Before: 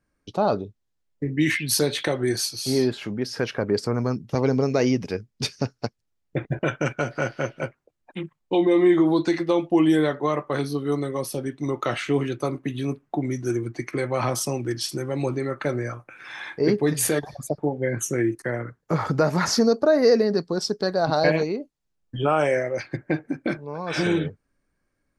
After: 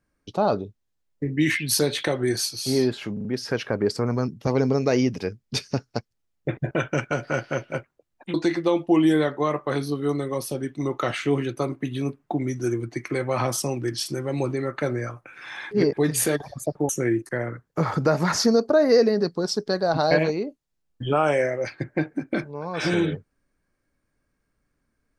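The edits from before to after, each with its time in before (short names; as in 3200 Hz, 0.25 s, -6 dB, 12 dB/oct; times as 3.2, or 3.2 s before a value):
3.13 stutter 0.04 s, 4 plays
8.22–9.17 cut
16.54–16.8 reverse
17.72–18.02 cut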